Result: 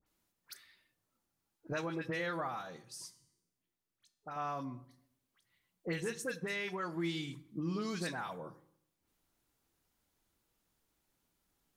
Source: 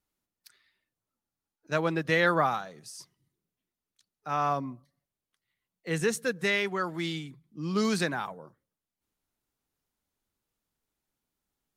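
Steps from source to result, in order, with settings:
downward compressor 6 to 1, threshold −41 dBFS, peak gain reduction 20 dB
0:02.76–0:04.36: tuned comb filter 120 Hz, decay 0.79 s, harmonics all, mix 60%
all-pass dispersion highs, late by 65 ms, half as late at 2,000 Hz
on a send: convolution reverb RT60 0.65 s, pre-delay 3 ms, DRR 12.5 dB
on the sum: level +5 dB

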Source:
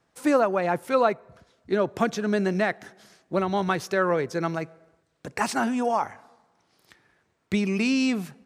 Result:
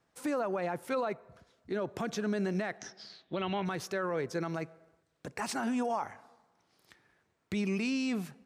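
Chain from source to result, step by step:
brickwall limiter −19 dBFS, peak gain reduction 10.5 dB
0:02.79–0:03.64: low-pass with resonance 6,300 Hz → 2,400 Hz, resonance Q 9.6
level −5 dB

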